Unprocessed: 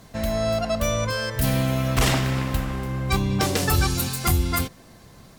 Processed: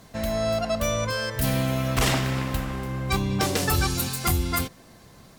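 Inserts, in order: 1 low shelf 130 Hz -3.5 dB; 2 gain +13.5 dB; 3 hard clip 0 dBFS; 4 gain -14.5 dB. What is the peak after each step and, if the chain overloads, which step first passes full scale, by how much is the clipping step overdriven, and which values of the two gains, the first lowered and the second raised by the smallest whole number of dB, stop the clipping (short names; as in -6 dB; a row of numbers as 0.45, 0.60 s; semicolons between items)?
-10.0, +3.5, 0.0, -14.5 dBFS; step 2, 3.5 dB; step 2 +9.5 dB, step 4 -10.5 dB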